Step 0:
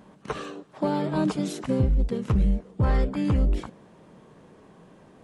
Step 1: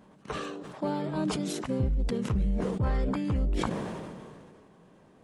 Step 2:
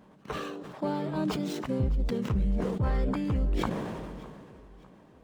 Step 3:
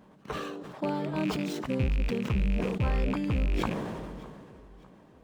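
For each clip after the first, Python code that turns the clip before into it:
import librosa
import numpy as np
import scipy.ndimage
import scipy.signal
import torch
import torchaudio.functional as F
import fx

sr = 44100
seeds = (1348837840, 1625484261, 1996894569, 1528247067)

y1 = fx.sustainer(x, sr, db_per_s=27.0)
y1 = y1 * librosa.db_to_amplitude(-6.0)
y2 = scipy.ndimage.median_filter(y1, 5, mode='constant')
y2 = fx.echo_feedback(y2, sr, ms=605, feedback_pct=45, wet_db=-21)
y3 = fx.rattle_buzz(y2, sr, strikes_db=-31.0, level_db=-28.0)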